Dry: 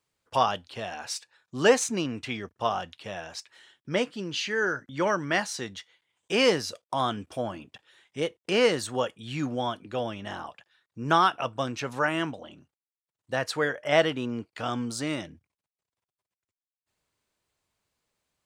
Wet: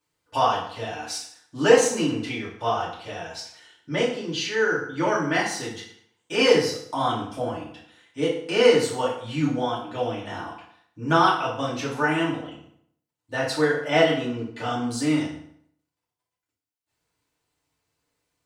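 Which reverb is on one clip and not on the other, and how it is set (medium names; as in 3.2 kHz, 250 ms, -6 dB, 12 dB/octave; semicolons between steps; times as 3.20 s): FDN reverb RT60 0.66 s, low-frequency decay 1×, high-frequency decay 0.8×, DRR -7.5 dB; trim -5 dB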